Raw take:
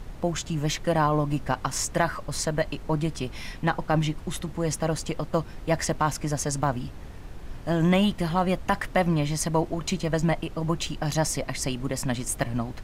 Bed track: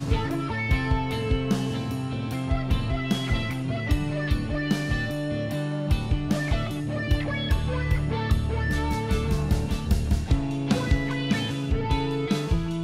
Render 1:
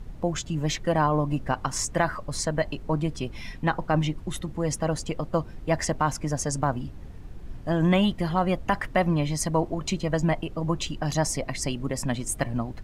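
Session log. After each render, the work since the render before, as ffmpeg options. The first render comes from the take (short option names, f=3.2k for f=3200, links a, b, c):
-af "afftdn=nr=8:nf=-41"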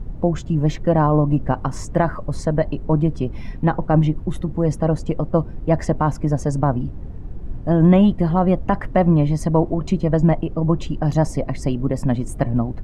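-af "tiltshelf=f=1.4k:g=9.5"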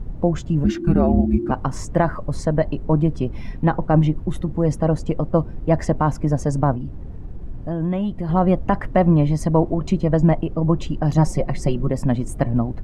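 -filter_complex "[0:a]asplit=3[a][b][c];[a]afade=t=out:st=0.63:d=0.02[d];[b]afreqshift=-360,afade=t=in:st=0.63:d=0.02,afade=t=out:st=1.5:d=0.02[e];[c]afade=t=in:st=1.5:d=0.02[f];[d][e][f]amix=inputs=3:normalize=0,asettb=1/sr,asplit=3[g][h][i];[g]atrim=end=6.754[j];[h]atrim=start=6.75:end=8.29,asetpts=PTS-STARTPTS,afade=t=in:d=0.004:c=qsin,afade=t=out:st=1.536:d=0.004:c=qsin,acompressor=threshold=-27dB:ratio=2:attack=3.2:release=140:knee=1:detection=peak[k];[i]atrim=start=8.286[l];[j][k]acrossfade=d=0.004:c1=hsin:c2=qsin[m];[m][l]acrossfade=d=0.004:c1=qsin:c2=hsin,asettb=1/sr,asplit=3[n][o][p];[n]atrim=end=11.174[q];[o]atrim=start=11.17:end=11.91,asetpts=PTS-STARTPTS,afade=t=in:d=0.004:c=qsin,afade=t=out:st=0.736:d=0.004:c=qsin,aecho=1:1:5.5:0.65,atrim=end_sample=32634[r];[p]atrim=start=11.906[s];[q][r]acrossfade=d=0.004:c1=hsin:c2=qsin[t];[t][s]acrossfade=d=0.004:c1=qsin:c2=hsin"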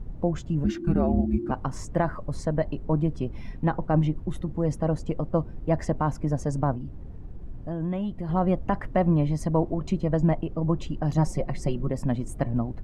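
-af "volume=-6.5dB"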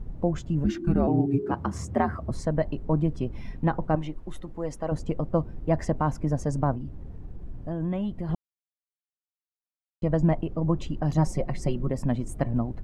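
-filter_complex "[0:a]asettb=1/sr,asplit=3[a][b][c];[a]atrim=end=1.074[d];[b]atrim=start=1.07:end=2.31,asetpts=PTS-STARTPTS,afade=t=in:d=0.004:c=qsin,afade=t=out:st=1.236:d=0.004:c=qsin,afreqshift=66[e];[c]atrim=start=2.306[f];[d][e]acrossfade=d=0.004:c1=hsin:c2=qsin[g];[g][f]acrossfade=d=0.004:c1=qsin:c2=hsin,asettb=1/sr,asplit=3[h][i][j];[h]atrim=end=3.954[k];[i]atrim=start=3.95:end=4.92,asetpts=PTS-STARTPTS,afade=t=in:d=0.004:c=qsin,afade=t=out:st=0.966:d=0.004:c=qsin,equalizer=f=110:w=0.44:g=-13.5[l];[j]atrim=start=4.916[m];[k][l]acrossfade=d=0.004:c1=hsin:c2=qsin[n];[n][m]acrossfade=d=0.004:c1=qsin:c2=hsin,asplit=3[o][p][q];[o]atrim=end=8.35,asetpts=PTS-STARTPTS,afade=t=out:st=8.346:d=0.004:c=hsin[r];[p]atrim=start=8.35:end=10.02,asetpts=PTS-STARTPTS,volume=0[s];[q]atrim=start=10.02,asetpts=PTS-STARTPTS,afade=t=in:d=0.004:c=hsin[t];[r][s][t]concat=n=3:v=0:a=1"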